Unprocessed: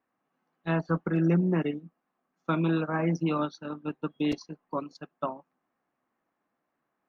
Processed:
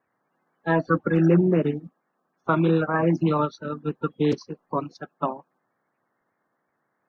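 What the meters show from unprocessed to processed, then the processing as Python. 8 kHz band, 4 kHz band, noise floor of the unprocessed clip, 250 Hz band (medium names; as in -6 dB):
no reading, +2.0 dB, -82 dBFS, +5.0 dB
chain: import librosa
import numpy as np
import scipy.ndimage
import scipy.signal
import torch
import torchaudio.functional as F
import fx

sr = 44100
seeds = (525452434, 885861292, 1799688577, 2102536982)

y = fx.spec_quant(x, sr, step_db=30)
y = fx.high_shelf(y, sr, hz=5200.0, db=-8.0)
y = F.gain(torch.from_numpy(y), 6.5).numpy()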